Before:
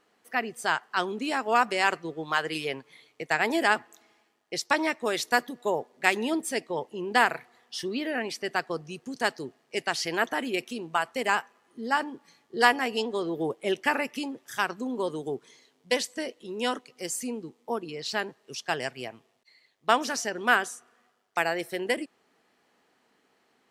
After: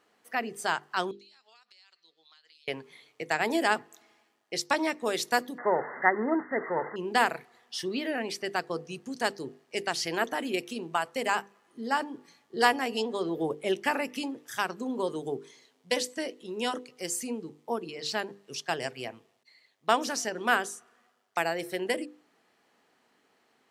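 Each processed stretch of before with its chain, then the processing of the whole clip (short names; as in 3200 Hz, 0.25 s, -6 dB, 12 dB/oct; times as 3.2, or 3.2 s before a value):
1.11–2.68 band-pass 4200 Hz, Q 5.8 + compressor 12:1, threshold -54 dBFS
5.58–6.96 switching spikes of -15.5 dBFS + dynamic EQ 1200 Hz, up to +6 dB, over -37 dBFS, Q 0.8 + brick-wall FIR low-pass 2100 Hz
whole clip: dynamic EQ 1800 Hz, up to -4 dB, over -34 dBFS, Q 0.74; HPF 50 Hz; notches 50/100/150/200/250/300/350/400/450/500 Hz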